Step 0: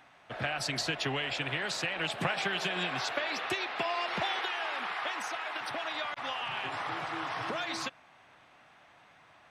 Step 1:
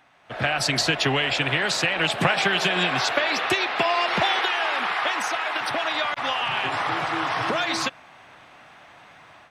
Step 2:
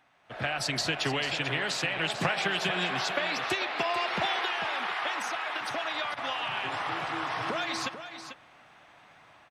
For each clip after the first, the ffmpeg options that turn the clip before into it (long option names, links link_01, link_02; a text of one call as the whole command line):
ffmpeg -i in.wav -af "dynaudnorm=framelen=230:gausssize=3:maxgain=10.5dB" out.wav
ffmpeg -i in.wav -af "aecho=1:1:443:0.299,volume=-7.5dB" out.wav